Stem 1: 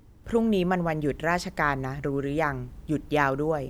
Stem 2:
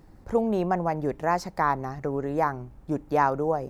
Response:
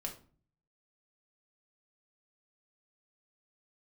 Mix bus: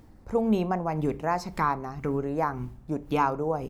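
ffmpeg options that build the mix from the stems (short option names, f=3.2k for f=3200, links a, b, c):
-filter_complex "[0:a]acompressor=threshold=-29dB:ratio=2.5,aeval=exprs='val(0)*pow(10,-21*(0.5-0.5*cos(2*PI*1.9*n/s))/20)':c=same,volume=-2dB,asplit=2[a][b];[b]volume=-4.5dB[c];[1:a]adelay=1.2,volume=-4.5dB,asplit=2[d][e];[e]volume=-8.5dB[f];[2:a]atrim=start_sample=2205[g];[c][f]amix=inputs=2:normalize=0[h];[h][g]afir=irnorm=-1:irlink=0[i];[a][d][i]amix=inputs=3:normalize=0"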